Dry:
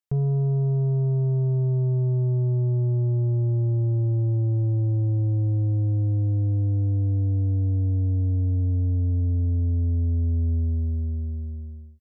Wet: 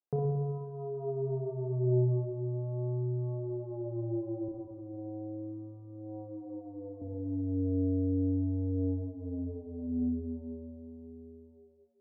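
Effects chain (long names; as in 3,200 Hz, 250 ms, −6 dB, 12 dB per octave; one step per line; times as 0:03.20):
Bessel low-pass filter 510 Hz, order 2
reverb reduction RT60 1.6 s
high-pass filter 380 Hz 12 dB per octave
0:04.49–0:07.03: spectral tilt +4 dB per octave
pitch vibrato 0.37 Hz 51 cents
spring reverb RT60 1.6 s, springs 32/56/60 ms, chirp 35 ms, DRR −0.5 dB
level +8.5 dB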